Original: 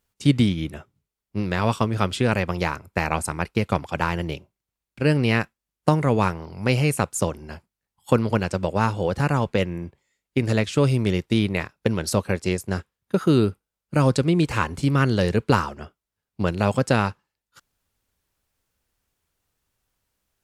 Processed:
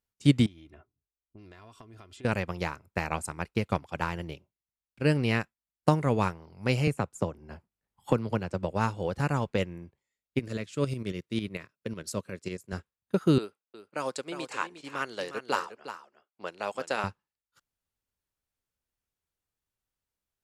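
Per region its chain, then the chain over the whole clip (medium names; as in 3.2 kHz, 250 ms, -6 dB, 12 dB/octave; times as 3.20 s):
0.46–2.25 s: level-controlled noise filter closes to 400 Hz, open at -20.5 dBFS + comb 2.9 ms, depth 57% + compression 12:1, threshold -32 dBFS
6.87–8.72 s: treble shelf 2.1 kHz -8 dB + three bands compressed up and down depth 70%
10.39–12.73 s: high-pass 110 Hz + peaking EQ 810 Hz -12.5 dB 0.29 oct + tremolo saw up 11 Hz, depth 60%
13.38–17.04 s: level-controlled noise filter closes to 2.9 kHz, open at -15.5 dBFS + high-pass 500 Hz + delay 358 ms -7.5 dB
whole clip: dynamic bell 7.3 kHz, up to +6 dB, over -53 dBFS, Q 4.7; upward expansion 1.5:1, over -35 dBFS; trim -2.5 dB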